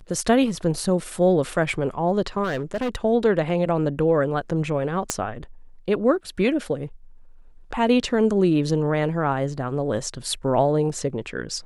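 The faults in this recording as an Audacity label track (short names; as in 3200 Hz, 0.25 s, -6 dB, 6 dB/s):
2.430000	2.960000	clipped -21 dBFS
5.100000	5.100000	pop -7 dBFS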